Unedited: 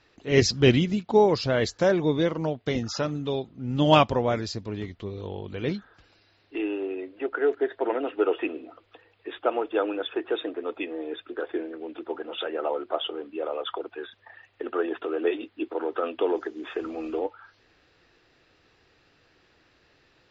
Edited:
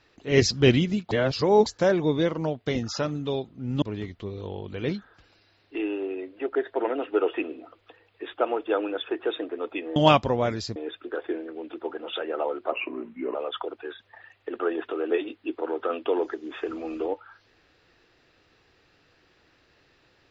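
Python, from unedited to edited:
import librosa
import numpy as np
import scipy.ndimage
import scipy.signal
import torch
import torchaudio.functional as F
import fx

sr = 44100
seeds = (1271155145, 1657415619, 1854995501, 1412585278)

y = fx.edit(x, sr, fx.reverse_span(start_s=1.11, length_s=0.55),
    fx.move(start_s=3.82, length_s=0.8, to_s=11.01),
    fx.cut(start_s=7.35, length_s=0.25),
    fx.speed_span(start_s=12.97, length_s=0.51, speed=0.81), tone=tone)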